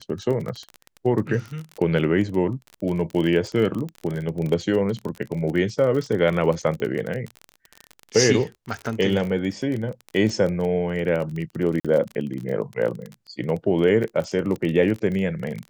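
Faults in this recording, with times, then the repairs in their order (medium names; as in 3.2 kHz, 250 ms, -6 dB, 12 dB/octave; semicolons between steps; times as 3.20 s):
crackle 29 per s -27 dBFS
11.80–11.85 s: dropout 46 ms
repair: de-click; interpolate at 11.80 s, 46 ms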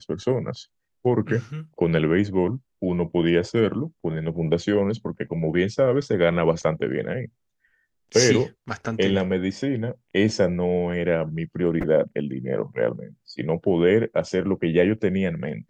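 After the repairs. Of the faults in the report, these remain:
nothing left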